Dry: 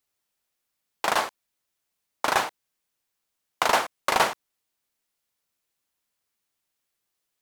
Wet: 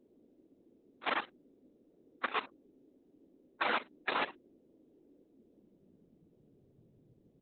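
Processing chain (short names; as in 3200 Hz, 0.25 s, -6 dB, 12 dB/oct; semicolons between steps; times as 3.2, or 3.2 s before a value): inharmonic rescaling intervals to 127%; reverb removal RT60 0.89 s; 2.46–4.3 low-pass opened by the level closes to 810 Hz, open at -27 dBFS; notches 50/100/150/200/250/300/350/400 Hz; level quantiser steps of 15 dB; band noise 66–450 Hz -68 dBFS; high-pass sweep 280 Hz -> 110 Hz, 5.17–6.91; Opus 8 kbps 48000 Hz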